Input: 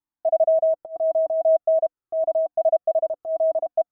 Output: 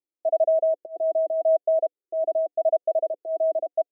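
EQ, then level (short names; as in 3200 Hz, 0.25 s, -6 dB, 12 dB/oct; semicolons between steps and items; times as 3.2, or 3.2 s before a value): Butterworth band-pass 450 Hz, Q 1.1; bell 420 Hz +14 dB 1.2 oct; -7.5 dB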